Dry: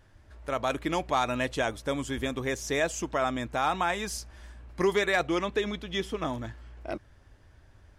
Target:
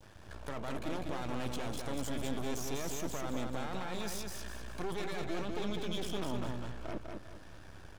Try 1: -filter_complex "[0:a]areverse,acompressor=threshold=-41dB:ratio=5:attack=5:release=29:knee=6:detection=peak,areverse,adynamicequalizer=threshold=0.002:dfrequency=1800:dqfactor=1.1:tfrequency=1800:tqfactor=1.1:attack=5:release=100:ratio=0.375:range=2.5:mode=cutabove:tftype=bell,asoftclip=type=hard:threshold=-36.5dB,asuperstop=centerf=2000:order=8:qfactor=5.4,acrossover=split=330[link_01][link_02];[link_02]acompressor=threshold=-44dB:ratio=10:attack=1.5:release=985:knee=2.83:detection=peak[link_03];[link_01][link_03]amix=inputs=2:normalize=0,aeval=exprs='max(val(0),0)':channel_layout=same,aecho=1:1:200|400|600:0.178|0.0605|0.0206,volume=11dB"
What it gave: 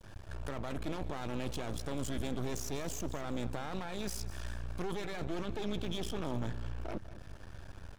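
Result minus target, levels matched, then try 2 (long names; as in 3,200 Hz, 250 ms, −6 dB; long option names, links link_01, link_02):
echo-to-direct −11 dB; 125 Hz band +3.0 dB
-filter_complex "[0:a]areverse,acompressor=threshold=-41dB:ratio=5:attack=5:release=29:knee=6:detection=peak,areverse,adynamicequalizer=threshold=0.002:dfrequency=1800:dqfactor=1.1:tfrequency=1800:tqfactor=1.1:attack=5:release=100:ratio=0.375:range=2.5:mode=cutabove:tftype=bell,highpass=frequency=130:poles=1,asoftclip=type=hard:threshold=-36.5dB,asuperstop=centerf=2000:order=8:qfactor=5.4,acrossover=split=330[link_01][link_02];[link_02]acompressor=threshold=-44dB:ratio=10:attack=1.5:release=985:knee=2.83:detection=peak[link_03];[link_01][link_03]amix=inputs=2:normalize=0,aeval=exprs='max(val(0),0)':channel_layout=same,aecho=1:1:200|400|600|800:0.631|0.215|0.0729|0.0248,volume=11dB"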